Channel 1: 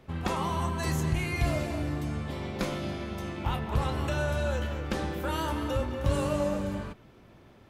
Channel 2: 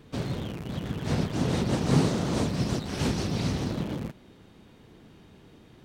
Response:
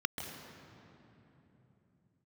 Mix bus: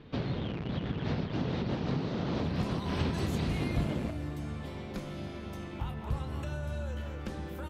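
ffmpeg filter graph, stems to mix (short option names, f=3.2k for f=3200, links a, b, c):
-filter_complex "[0:a]acrossover=split=280[a][b];[b]acompressor=threshold=-37dB:ratio=6[c];[a][c]amix=inputs=2:normalize=0,adelay=2350,volume=-5dB[d];[1:a]lowpass=f=4.3k:w=0.5412,lowpass=f=4.3k:w=1.3066,acompressor=threshold=-29dB:ratio=8,volume=0.5dB[e];[d][e]amix=inputs=2:normalize=0"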